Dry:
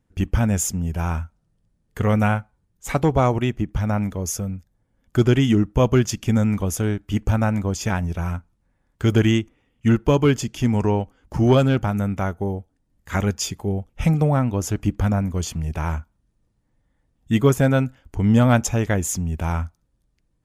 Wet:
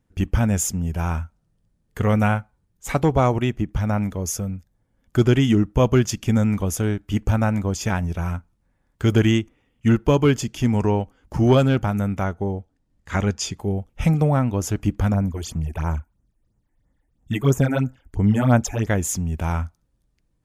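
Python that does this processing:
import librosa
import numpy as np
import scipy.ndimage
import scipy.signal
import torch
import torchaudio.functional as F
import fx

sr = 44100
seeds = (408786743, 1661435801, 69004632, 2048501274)

y = fx.lowpass(x, sr, hz=7700.0, slope=12, at=(12.24, 13.59))
y = fx.phaser_stages(y, sr, stages=8, low_hz=140.0, high_hz=4400.0, hz=3.0, feedback_pct=25, at=(15.14, 18.87))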